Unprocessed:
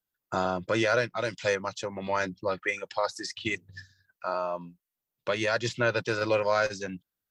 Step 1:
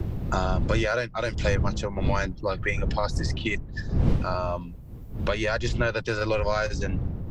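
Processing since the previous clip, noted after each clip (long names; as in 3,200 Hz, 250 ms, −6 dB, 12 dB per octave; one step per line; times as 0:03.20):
wind on the microphone 100 Hz −27 dBFS
multiband upward and downward compressor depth 70%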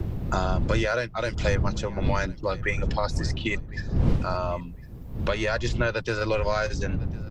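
repeating echo 1,054 ms, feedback 16%, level −22 dB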